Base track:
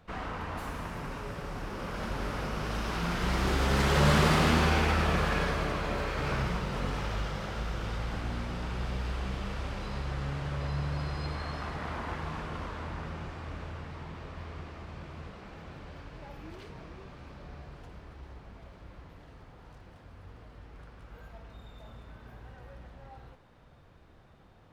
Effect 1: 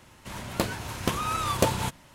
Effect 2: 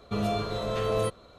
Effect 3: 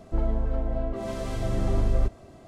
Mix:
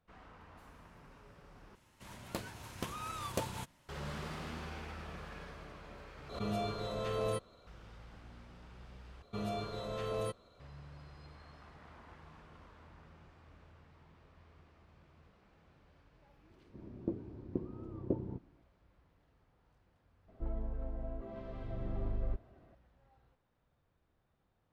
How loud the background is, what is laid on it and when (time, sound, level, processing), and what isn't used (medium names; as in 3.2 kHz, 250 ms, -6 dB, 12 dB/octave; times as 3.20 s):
base track -19.5 dB
1.75 s: replace with 1 -13.5 dB
6.29 s: replace with 2 -8 dB + swell ahead of each attack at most 99 dB/s
9.22 s: replace with 2 -10 dB
16.48 s: add 1 -13 dB + resonant low-pass 340 Hz, resonance Q 3.3
20.28 s: add 3 -13 dB + distance through air 360 m